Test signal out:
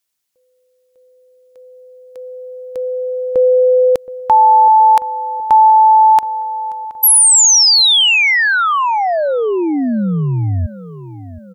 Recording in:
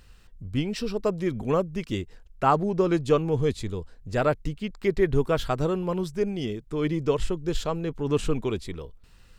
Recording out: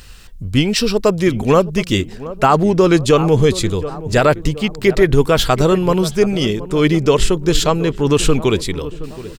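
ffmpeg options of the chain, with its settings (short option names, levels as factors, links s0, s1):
-filter_complex "[0:a]highshelf=f=2200:g=8,asplit=2[s0][s1];[s1]adelay=722,lowpass=f=1200:p=1,volume=0.158,asplit=2[s2][s3];[s3]adelay=722,lowpass=f=1200:p=1,volume=0.54,asplit=2[s4][s5];[s5]adelay=722,lowpass=f=1200:p=1,volume=0.54,asplit=2[s6][s7];[s7]adelay=722,lowpass=f=1200:p=1,volume=0.54,asplit=2[s8][s9];[s9]adelay=722,lowpass=f=1200:p=1,volume=0.54[s10];[s0][s2][s4][s6][s8][s10]amix=inputs=6:normalize=0,alimiter=level_in=4.47:limit=0.891:release=50:level=0:latency=1,volume=0.891"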